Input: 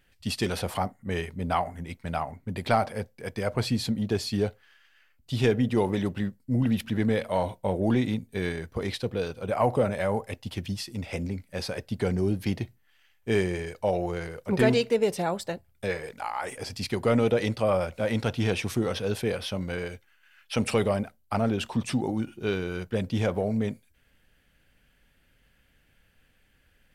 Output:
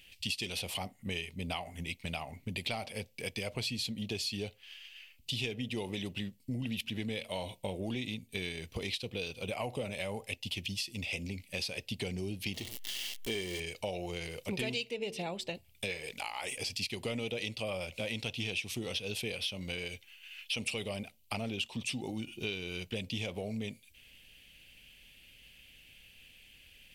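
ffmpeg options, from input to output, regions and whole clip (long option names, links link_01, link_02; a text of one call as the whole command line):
ffmpeg -i in.wav -filter_complex "[0:a]asettb=1/sr,asplit=3[link_01][link_02][link_03];[link_01]atrim=end=12.544[link_04];[link_02]atrim=start=12.54:end=13.6,asetpts=PTS-STARTPTS,afade=type=in:duration=0.004:curve=qsin,afade=type=out:start_time=1.056:duration=0.004:curve=qsin,aeval=exprs='val(0)+0.5*0.0188*sgn(val(0))':channel_layout=same,equalizer=frequency=130:width_type=o:width=0.82:gain=-9,bandreject=frequency=2500:width=5.6[link_05];[link_03]atrim=start=13.596[link_06];[link_04][link_05]acrossfade=duration=0.004:curve1=hsin:curve2=qsin[link_07];[link_07][link_06]acrossfade=duration=0.004:curve1=qsin:curve2=hsin,asettb=1/sr,asplit=3[link_08][link_09][link_10];[link_08]atrim=end=14.914[link_11];[link_09]atrim=start=14.91:end=15.55,asetpts=PTS-STARTPTS,afade=type=in:duration=0.004:curve=qsin,afade=type=out:start_time=0.636:duration=0.004:curve=qsin,lowpass=frequency=2500:poles=1,bandreject=frequency=74.72:width_type=h:width=4,bandreject=frequency=149.44:width_type=h:width=4,bandreject=frequency=224.16:width_type=h:width=4,bandreject=frequency=298.88:width_type=h:width=4,bandreject=frequency=373.6:width_type=h:width=4,bandreject=frequency=448.32:width_type=h:width=4[link_12];[link_10]atrim=start=15.546[link_13];[link_11][link_12]acrossfade=duration=0.004:curve1=hsin:curve2=qsin[link_14];[link_14][link_13]acrossfade=duration=0.004:curve1=qsin:curve2=hsin,highshelf=frequency=2000:width_type=q:width=3:gain=9.5,acompressor=threshold=-36dB:ratio=4" out.wav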